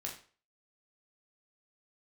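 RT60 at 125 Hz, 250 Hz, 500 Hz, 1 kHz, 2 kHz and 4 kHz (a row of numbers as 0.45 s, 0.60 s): 0.40 s, 0.40 s, 0.40 s, 0.40 s, 0.40 s, 0.35 s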